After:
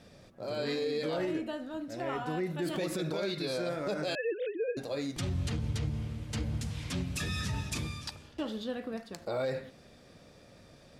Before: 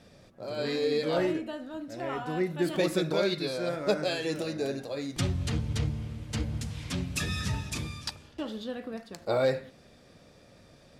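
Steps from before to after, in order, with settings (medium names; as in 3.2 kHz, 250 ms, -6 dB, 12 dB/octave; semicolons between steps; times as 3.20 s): 4.15–4.77 s: formants replaced by sine waves; peak limiter -25 dBFS, peak gain reduction 11 dB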